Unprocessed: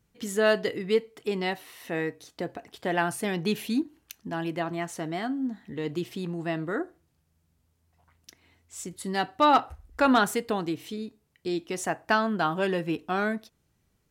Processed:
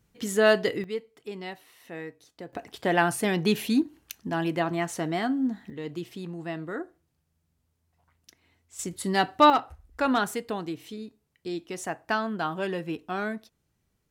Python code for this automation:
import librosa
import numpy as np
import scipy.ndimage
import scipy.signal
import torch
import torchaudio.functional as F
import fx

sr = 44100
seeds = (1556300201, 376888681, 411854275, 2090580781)

y = fx.gain(x, sr, db=fx.steps((0.0, 2.5), (0.84, -8.5), (2.53, 3.5), (5.7, -4.0), (8.79, 4.0), (9.5, -3.5)))